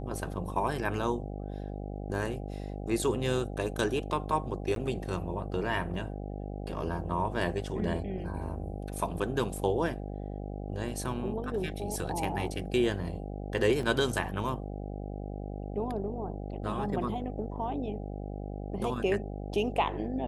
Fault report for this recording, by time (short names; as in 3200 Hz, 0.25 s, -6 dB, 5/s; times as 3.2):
buzz 50 Hz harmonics 16 -38 dBFS
4.75–4.76 gap
13.83 gap 2.1 ms